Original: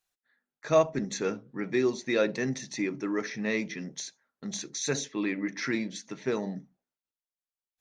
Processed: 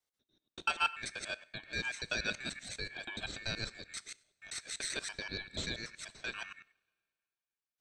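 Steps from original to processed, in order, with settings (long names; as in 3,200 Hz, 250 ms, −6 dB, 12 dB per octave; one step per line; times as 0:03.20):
reversed piece by piece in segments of 96 ms
high-pass filter 1,300 Hz 6 dB per octave
high-shelf EQ 5,900 Hz −7 dB
coupled-rooms reverb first 0.52 s, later 2.3 s, from −22 dB, DRR 17 dB
ring modulation 2,000 Hz
level +1.5 dB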